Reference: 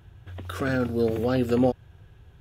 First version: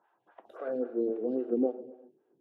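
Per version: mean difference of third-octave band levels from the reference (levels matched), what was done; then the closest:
11.0 dB: high-pass filter 190 Hz 24 dB per octave
band-pass filter sweep 950 Hz → 350 Hz, 0:00.30–0:00.94
reverb whose tail is shaped and stops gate 420 ms falling, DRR 9 dB
phaser with staggered stages 3.7 Hz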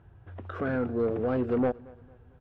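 5.0 dB: low-pass filter 1,400 Hz 12 dB per octave
low-shelf EQ 200 Hz −6 dB
soft clipping −19.5 dBFS, distortion −15 dB
repeating echo 227 ms, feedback 40%, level −23 dB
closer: second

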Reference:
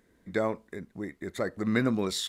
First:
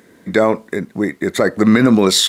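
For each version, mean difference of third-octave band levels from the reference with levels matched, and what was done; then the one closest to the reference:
2.0 dB: high-pass filter 140 Hz 12 dB per octave
boost into a limiter +19.5 dB
level −1 dB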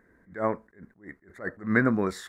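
7.5 dB: high shelf with overshoot 2,300 Hz −10.5 dB, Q 3
level that may rise only so fast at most 190 dB per second
level +2.5 dB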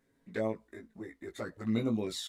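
3.0 dB: flanger swept by the level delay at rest 7.6 ms, full sweep at −23 dBFS
double-tracking delay 18 ms −4 dB
level −5.5 dB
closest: first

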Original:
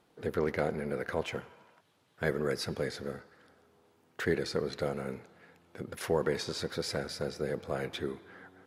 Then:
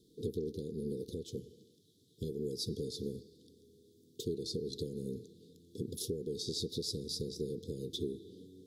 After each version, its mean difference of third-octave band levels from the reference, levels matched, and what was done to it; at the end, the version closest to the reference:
11.5 dB: downward compressor 12 to 1, threshold −36 dBFS, peak gain reduction 13.5 dB
Chebyshev band-stop filter 450–3,500 Hz, order 5
level +5 dB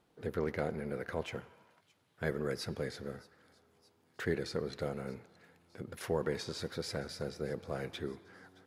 1.0 dB: low-shelf EQ 150 Hz +5.5 dB
delay with a high-pass on its return 620 ms, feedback 59%, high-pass 3,600 Hz, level −20 dB
level −5 dB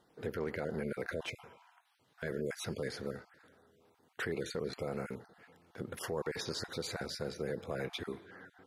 3.5 dB: time-frequency cells dropped at random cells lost 23%
brickwall limiter −25.5 dBFS, peak gain reduction 9.5 dB
level −1 dB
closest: second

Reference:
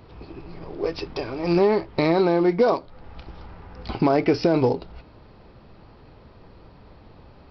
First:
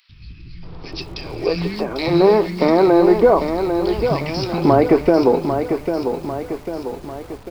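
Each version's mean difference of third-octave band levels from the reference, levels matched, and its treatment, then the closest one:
10.5 dB: three-band delay without the direct sound highs, lows, mids 90/630 ms, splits 190/2,100 Hz
feedback echo at a low word length 797 ms, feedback 55%, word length 8 bits, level −7 dB
level +6.5 dB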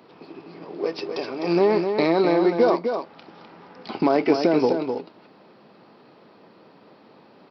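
3.5 dB: high-pass filter 190 Hz 24 dB per octave
on a send: single-tap delay 254 ms −6.5 dB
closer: second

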